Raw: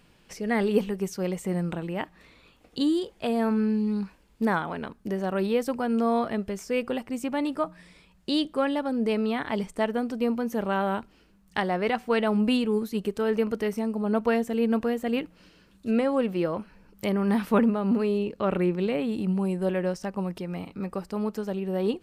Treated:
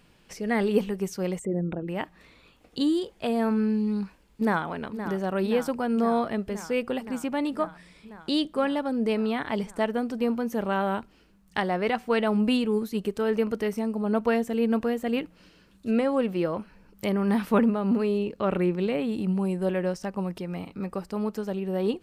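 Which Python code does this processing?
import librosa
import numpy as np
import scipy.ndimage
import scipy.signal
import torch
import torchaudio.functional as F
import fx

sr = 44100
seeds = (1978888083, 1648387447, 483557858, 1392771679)

y = fx.envelope_sharpen(x, sr, power=2.0, at=(1.38, 1.87), fade=0.02)
y = fx.echo_throw(y, sr, start_s=3.87, length_s=0.78, ms=520, feedback_pct=80, wet_db=-10.5)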